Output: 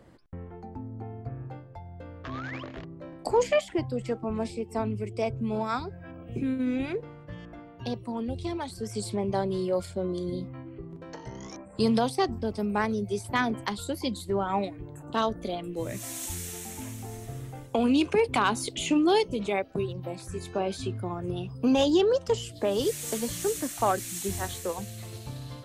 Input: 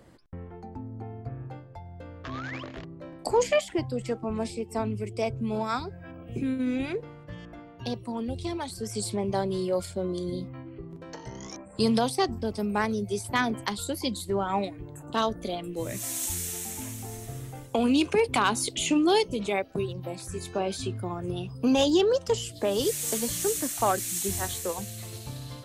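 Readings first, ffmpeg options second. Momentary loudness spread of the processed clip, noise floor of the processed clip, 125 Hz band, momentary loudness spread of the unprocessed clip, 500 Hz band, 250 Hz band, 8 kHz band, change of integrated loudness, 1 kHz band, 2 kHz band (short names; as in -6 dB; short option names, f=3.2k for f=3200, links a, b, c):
18 LU, -46 dBFS, 0.0 dB, 18 LU, 0.0 dB, 0.0 dB, -5.0 dB, -0.5 dB, -0.5 dB, -1.0 dB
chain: -af "highshelf=f=4.2k:g=-6.5"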